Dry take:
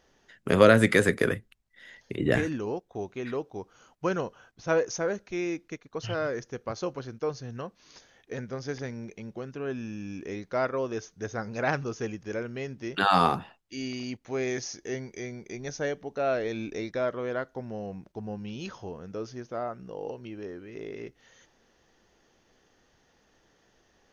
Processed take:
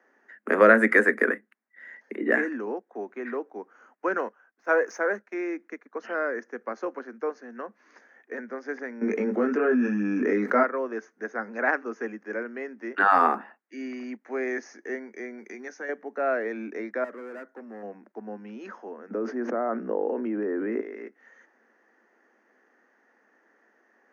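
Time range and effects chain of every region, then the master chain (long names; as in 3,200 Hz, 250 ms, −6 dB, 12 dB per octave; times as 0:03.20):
0:04.16–0:05.34: noise gate −49 dBFS, range −7 dB + low-shelf EQ 320 Hz −8 dB + leveller curve on the samples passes 1
0:09.01–0:10.63: double-tracking delay 20 ms −2.5 dB + hollow resonant body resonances 240/440/1,300 Hz, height 8 dB + envelope flattener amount 70%
0:15.38–0:15.89: high-shelf EQ 2,300 Hz +9 dB + downward compressor, threshold −34 dBFS + notch filter 620 Hz, Q 10
0:17.04–0:17.83: hard clipping −36 dBFS + parametric band 1,400 Hz −4.5 dB 2.9 octaves
0:19.10–0:20.81: high-pass filter 160 Hz 6 dB per octave + spectral tilt −3.5 dB per octave + envelope flattener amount 100%
whole clip: Butterworth high-pass 210 Hz 96 dB per octave; high shelf with overshoot 2,500 Hz −11.5 dB, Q 3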